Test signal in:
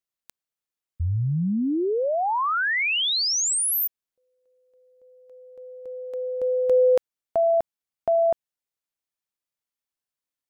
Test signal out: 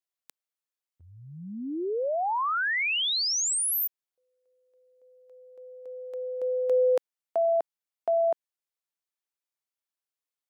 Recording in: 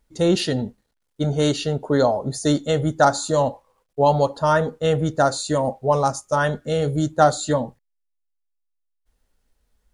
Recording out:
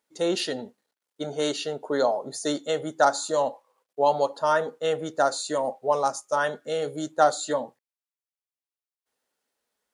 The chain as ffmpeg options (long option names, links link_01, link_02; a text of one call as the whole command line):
ffmpeg -i in.wav -af "highpass=370,volume=-3.5dB" out.wav